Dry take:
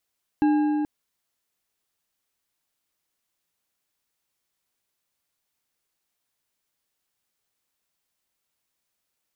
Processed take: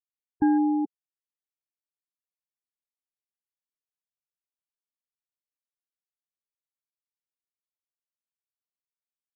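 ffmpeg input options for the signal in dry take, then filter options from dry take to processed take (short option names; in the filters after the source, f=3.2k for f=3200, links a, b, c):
-f lavfi -i "aevalsrc='0.158*pow(10,-3*t/3.79)*sin(2*PI*300*t)+0.0501*pow(10,-3*t/2.796)*sin(2*PI*827.1*t)+0.0158*pow(10,-3*t/2.285)*sin(2*PI*1621.2*t)+0.00501*pow(10,-3*t/1.965)*sin(2*PI*2679.9*t)+0.00158*pow(10,-3*t/1.742)*sin(2*PI*4002*t)':d=0.43:s=44100"
-af "afftfilt=real='re*gte(hypot(re,im),0.0891)':imag='im*gte(hypot(re,im),0.0891)':win_size=1024:overlap=0.75"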